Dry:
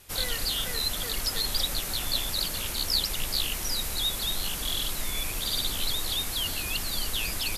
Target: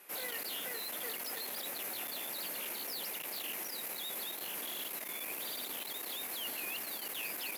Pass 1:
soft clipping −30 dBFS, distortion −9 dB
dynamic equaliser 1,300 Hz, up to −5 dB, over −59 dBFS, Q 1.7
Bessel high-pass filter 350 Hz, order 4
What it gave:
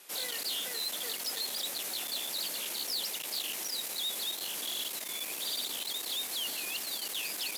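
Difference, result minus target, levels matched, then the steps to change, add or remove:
4,000 Hz band +4.0 dB
add after Bessel high-pass filter: flat-topped bell 5,400 Hz −10 dB 1.8 octaves

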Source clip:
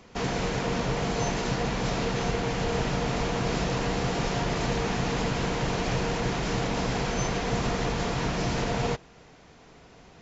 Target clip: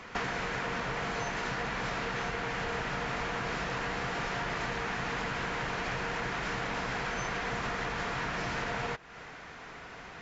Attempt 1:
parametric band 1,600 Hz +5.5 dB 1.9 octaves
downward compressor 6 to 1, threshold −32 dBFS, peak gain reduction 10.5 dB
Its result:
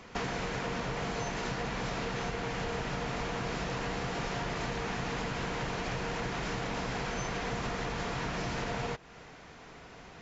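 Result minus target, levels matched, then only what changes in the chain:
2,000 Hz band −3.0 dB
change: parametric band 1,600 Hz +13.5 dB 1.9 octaves

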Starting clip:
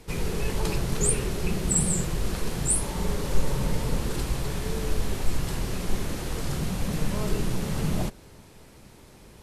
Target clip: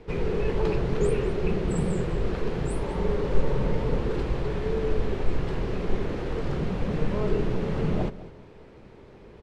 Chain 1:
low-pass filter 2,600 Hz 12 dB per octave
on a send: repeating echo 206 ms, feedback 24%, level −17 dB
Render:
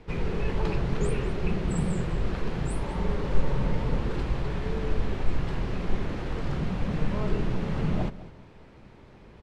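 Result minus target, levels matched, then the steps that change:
500 Hz band −4.5 dB
add after low-pass filter: parametric band 430 Hz +7.5 dB 0.75 octaves

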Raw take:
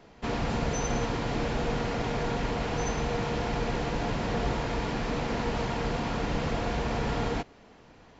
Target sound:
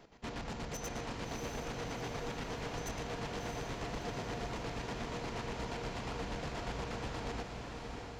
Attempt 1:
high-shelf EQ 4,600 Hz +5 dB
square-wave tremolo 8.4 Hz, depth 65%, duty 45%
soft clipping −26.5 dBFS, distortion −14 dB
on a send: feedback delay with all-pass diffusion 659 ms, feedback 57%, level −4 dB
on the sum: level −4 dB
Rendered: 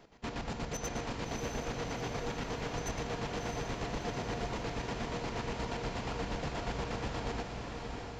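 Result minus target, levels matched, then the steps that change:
soft clipping: distortion −6 dB
change: soft clipping −33 dBFS, distortion −8 dB

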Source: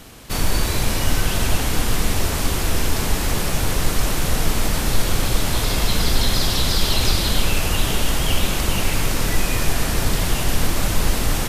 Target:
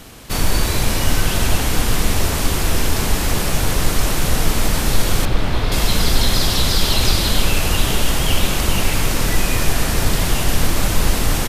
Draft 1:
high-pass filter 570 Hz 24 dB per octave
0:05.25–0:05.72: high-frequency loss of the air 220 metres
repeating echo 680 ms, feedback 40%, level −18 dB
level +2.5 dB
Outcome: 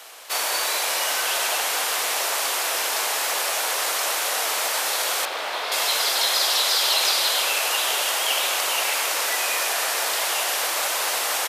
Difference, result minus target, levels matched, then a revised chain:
500 Hz band −3.0 dB
0:05.25–0:05.72: high-frequency loss of the air 220 metres
repeating echo 680 ms, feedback 40%, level −18 dB
level +2.5 dB

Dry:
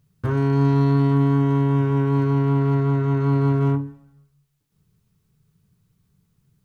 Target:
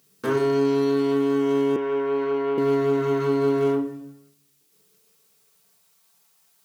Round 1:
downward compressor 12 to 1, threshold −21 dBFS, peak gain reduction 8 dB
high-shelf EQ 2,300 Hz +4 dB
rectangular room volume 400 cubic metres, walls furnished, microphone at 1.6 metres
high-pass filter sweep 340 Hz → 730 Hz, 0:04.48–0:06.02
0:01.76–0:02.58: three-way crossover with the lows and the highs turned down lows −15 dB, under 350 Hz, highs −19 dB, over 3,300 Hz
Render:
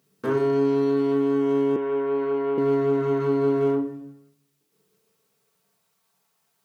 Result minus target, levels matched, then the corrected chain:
4,000 Hz band −6.5 dB
downward compressor 12 to 1, threshold −21 dBFS, peak gain reduction 8 dB
high-shelf EQ 2,300 Hz +14.5 dB
rectangular room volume 400 cubic metres, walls furnished, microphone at 1.6 metres
high-pass filter sweep 340 Hz → 730 Hz, 0:04.48–0:06.02
0:01.76–0:02.58: three-way crossover with the lows and the highs turned down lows −15 dB, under 350 Hz, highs −19 dB, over 3,300 Hz

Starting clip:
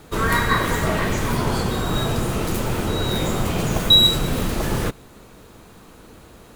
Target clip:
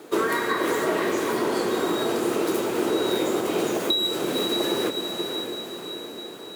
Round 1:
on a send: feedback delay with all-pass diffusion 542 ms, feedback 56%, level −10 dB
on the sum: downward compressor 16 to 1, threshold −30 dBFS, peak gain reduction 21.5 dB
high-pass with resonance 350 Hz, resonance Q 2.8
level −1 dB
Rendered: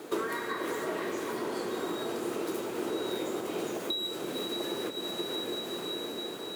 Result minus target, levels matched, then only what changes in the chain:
downward compressor: peak gain reduction +10 dB
change: downward compressor 16 to 1, threshold −19.5 dBFS, peak gain reduction 11.5 dB

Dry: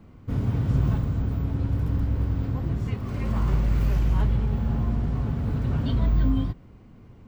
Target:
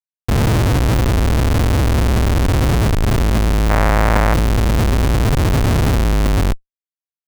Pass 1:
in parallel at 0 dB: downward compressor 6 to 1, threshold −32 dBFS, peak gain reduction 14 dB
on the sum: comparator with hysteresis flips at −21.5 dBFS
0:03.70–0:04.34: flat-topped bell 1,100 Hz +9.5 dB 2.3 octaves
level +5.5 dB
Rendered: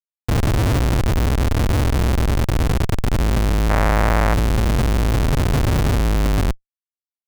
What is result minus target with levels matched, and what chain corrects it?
downward compressor: peak gain reduction +9 dB
in parallel at 0 dB: downward compressor 6 to 1, threshold −21.5 dBFS, peak gain reduction 5.5 dB
on the sum: comparator with hysteresis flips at −21.5 dBFS
0:03.70–0:04.34: flat-topped bell 1,100 Hz +9.5 dB 2.3 octaves
level +5.5 dB

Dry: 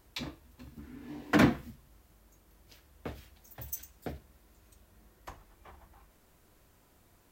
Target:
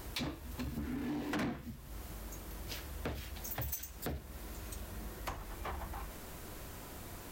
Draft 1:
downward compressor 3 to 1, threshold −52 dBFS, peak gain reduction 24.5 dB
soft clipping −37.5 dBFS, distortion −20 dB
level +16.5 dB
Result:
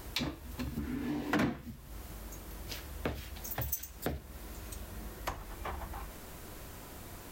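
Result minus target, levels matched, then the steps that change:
soft clipping: distortion −12 dB
change: soft clipping −49 dBFS, distortion −8 dB

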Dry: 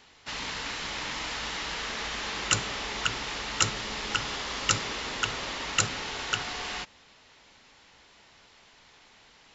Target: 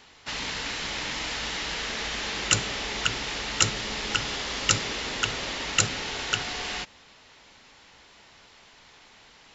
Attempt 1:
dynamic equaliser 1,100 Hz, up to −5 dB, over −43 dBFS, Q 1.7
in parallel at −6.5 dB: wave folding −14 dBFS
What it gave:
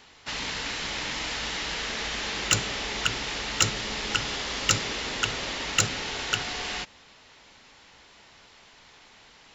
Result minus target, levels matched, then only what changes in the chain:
wave folding: distortion +31 dB
change: wave folding −5.5 dBFS

